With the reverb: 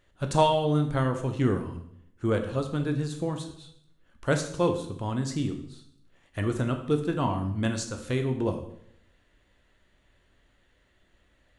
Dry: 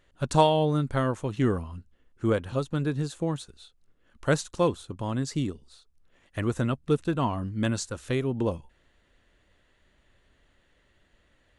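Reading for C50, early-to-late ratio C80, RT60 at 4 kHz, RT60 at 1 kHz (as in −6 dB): 9.0 dB, 12.0 dB, 0.60 s, 0.65 s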